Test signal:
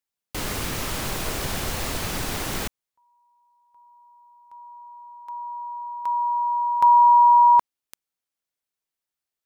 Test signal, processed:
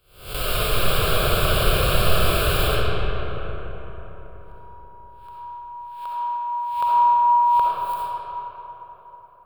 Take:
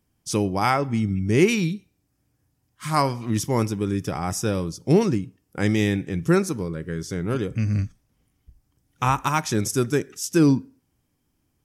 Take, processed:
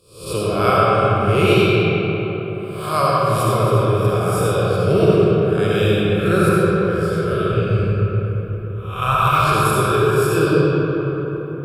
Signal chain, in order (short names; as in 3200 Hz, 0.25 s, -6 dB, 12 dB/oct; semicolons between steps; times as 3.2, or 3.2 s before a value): spectral swells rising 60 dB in 0.53 s; fixed phaser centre 1300 Hz, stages 8; digital reverb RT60 4.5 s, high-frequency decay 0.45×, pre-delay 25 ms, DRR -7 dB; gain +2 dB